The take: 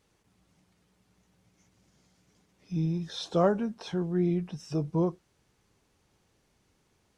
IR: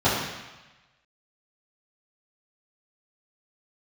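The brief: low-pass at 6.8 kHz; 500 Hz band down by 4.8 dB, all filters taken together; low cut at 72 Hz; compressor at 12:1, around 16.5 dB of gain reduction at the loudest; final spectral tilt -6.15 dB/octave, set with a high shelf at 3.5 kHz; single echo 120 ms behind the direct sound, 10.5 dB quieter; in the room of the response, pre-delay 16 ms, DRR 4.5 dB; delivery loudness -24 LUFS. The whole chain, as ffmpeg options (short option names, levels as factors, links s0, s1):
-filter_complex "[0:a]highpass=72,lowpass=6800,equalizer=f=500:t=o:g=-6.5,highshelf=f=3500:g=-7.5,acompressor=threshold=0.01:ratio=12,aecho=1:1:120:0.299,asplit=2[s0][s1];[1:a]atrim=start_sample=2205,adelay=16[s2];[s1][s2]afir=irnorm=-1:irlink=0,volume=0.0708[s3];[s0][s3]amix=inputs=2:normalize=0,volume=8.91"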